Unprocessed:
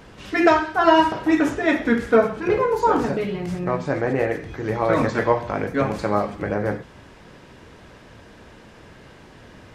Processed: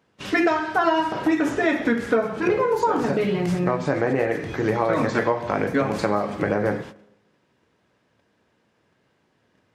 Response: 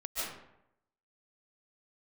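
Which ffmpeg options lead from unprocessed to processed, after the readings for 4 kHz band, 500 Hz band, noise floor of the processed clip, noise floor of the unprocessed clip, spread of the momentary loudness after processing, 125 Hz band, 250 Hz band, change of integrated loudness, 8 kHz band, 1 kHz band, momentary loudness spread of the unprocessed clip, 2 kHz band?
-2.5 dB, -1.5 dB, -67 dBFS, -47 dBFS, 4 LU, -0.5 dB, -1.0 dB, -1.5 dB, n/a, -3.0 dB, 9 LU, -0.5 dB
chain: -filter_complex "[0:a]agate=range=-26dB:threshold=-40dB:ratio=16:detection=peak,highpass=110,acompressor=threshold=-24dB:ratio=6,asplit=2[a][b];[1:a]atrim=start_sample=2205[c];[b][c]afir=irnorm=-1:irlink=0,volume=-27dB[d];[a][d]amix=inputs=2:normalize=0,volume=6dB"

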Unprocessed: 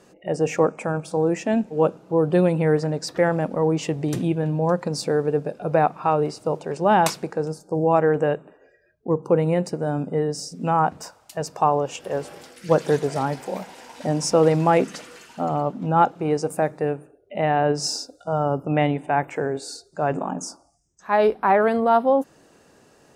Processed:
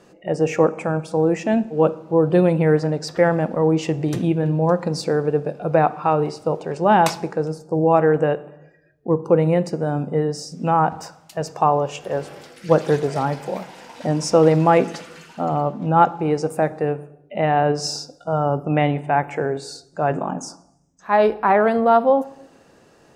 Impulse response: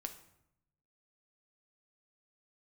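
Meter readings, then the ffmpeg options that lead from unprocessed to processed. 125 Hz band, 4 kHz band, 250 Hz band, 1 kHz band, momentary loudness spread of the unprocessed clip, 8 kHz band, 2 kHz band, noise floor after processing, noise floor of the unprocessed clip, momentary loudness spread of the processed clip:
+3.0 dB, +0.5 dB, +3.0 dB, +2.5 dB, 12 LU, -1.5 dB, +2.0 dB, -53 dBFS, -57 dBFS, 12 LU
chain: -filter_complex "[0:a]asplit=2[a][b];[1:a]atrim=start_sample=2205,lowpass=6.4k[c];[b][c]afir=irnorm=-1:irlink=0,volume=-0.5dB[d];[a][d]amix=inputs=2:normalize=0,volume=-2dB"

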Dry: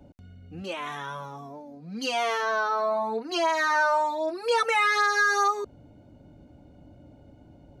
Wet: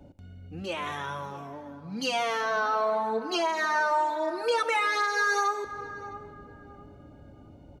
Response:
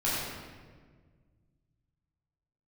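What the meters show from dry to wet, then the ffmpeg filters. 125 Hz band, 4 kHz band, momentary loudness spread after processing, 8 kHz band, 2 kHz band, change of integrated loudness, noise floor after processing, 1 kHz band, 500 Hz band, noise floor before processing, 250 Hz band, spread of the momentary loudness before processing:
n/a, -1.5 dB, 16 LU, -2.5 dB, -3.0 dB, -2.5 dB, -51 dBFS, -2.0 dB, -1.5 dB, -53 dBFS, 0.0 dB, 18 LU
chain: -filter_complex "[0:a]asplit=2[a][b];[b]adelay=660,lowpass=f=1.2k:p=1,volume=-16.5dB,asplit=2[c][d];[d]adelay=660,lowpass=f=1.2k:p=1,volume=0.34,asplit=2[e][f];[f]adelay=660,lowpass=f=1.2k:p=1,volume=0.34[g];[a][c][e][g]amix=inputs=4:normalize=0,asplit=2[h][i];[1:a]atrim=start_sample=2205,asetrate=25137,aresample=44100[j];[i][j]afir=irnorm=-1:irlink=0,volume=-25.5dB[k];[h][k]amix=inputs=2:normalize=0,alimiter=limit=-17dB:level=0:latency=1:release=478"

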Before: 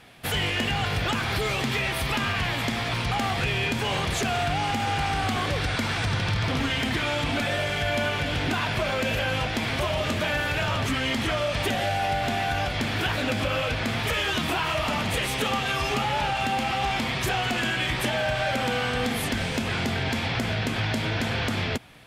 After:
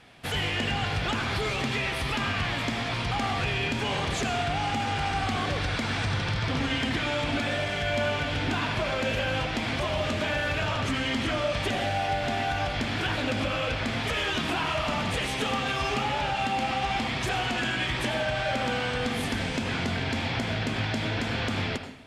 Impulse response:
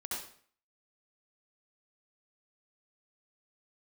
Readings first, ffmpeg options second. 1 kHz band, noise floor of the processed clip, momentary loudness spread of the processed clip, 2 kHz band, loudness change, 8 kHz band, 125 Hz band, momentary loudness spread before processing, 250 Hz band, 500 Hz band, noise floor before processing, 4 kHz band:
-2.0 dB, -31 dBFS, 2 LU, -2.5 dB, -2.0 dB, -4.5 dB, -2.5 dB, 2 LU, -1.5 dB, -1.5 dB, -29 dBFS, -2.5 dB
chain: -filter_complex "[0:a]lowpass=8.4k,asplit=2[a][b];[b]equalizer=f=270:t=o:w=0.27:g=6[c];[1:a]atrim=start_sample=2205,asetrate=36162,aresample=44100[d];[c][d]afir=irnorm=-1:irlink=0,volume=-8.5dB[e];[a][e]amix=inputs=2:normalize=0,volume=-4.5dB"

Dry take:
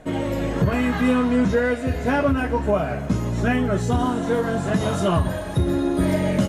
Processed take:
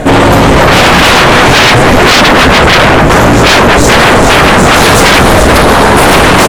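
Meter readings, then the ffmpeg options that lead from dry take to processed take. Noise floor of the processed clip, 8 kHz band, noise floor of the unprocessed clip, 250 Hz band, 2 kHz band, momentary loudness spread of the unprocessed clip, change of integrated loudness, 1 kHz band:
-4 dBFS, +27.5 dB, -29 dBFS, +13.0 dB, +25.0 dB, 5 LU, +18.5 dB, +23.5 dB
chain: -filter_complex "[0:a]asplit=7[a][b][c][d][e][f][g];[b]adelay=429,afreqshift=-120,volume=-6dB[h];[c]adelay=858,afreqshift=-240,volume=-12.4dB[i];[d]adelay=1287,afreqshift=-360,volume=-18.8dB[j];[e]adelay=1716,afreqshift=-480,volume=-25.1dB[k];[f]adelay=2145,afreqshift=-600,volume=-31.5dB[l];[g]adelay=2574,afreqshift=-720,volume=-37.9dB[m];[a][h][i][j][k][l][m]amix=inputs=7:normalize=0,aeval=exprs='0.473*sin(PI/2*7.94*val(0)/0.473)':c=same,acontrast=74,volume=2dB"

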